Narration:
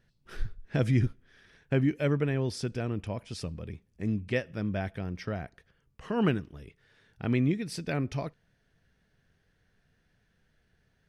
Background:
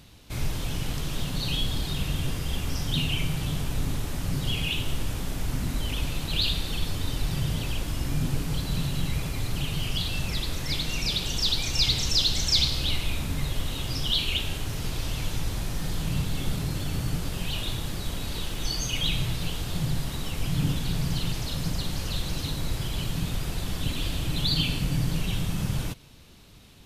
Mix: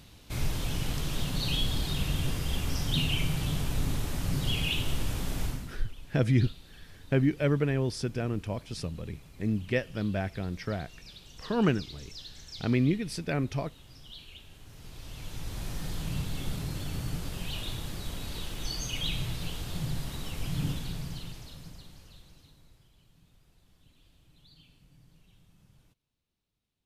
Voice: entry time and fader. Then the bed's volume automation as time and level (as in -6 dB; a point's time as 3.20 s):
5.40 s, +1.0 dB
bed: 5.45 s -1.5 dB
5.84 s -22 dB
14.48 s -22 dB
15.67 s -5.5 dB
20.68 s -5.5 dB
22.96 s -33.5 dB